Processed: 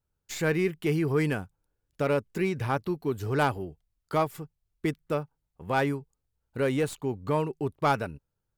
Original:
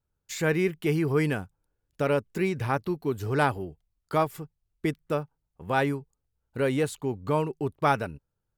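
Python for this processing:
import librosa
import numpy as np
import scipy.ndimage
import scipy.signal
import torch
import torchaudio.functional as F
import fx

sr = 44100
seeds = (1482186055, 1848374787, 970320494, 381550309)

p1 = fx.tracing_dist(x, sr, depth_ms=0.046)
p2 = np.clip(p1, -10.0 ** (-20.5 / 20.0), 10.0 ** (-20.5 / 20.0))
p3 = p1 + F.gain(torch.from_numpy(p2), -8.5).numpy()
y = F.gain(torch.from_numpy(p3), -3.5).numpy()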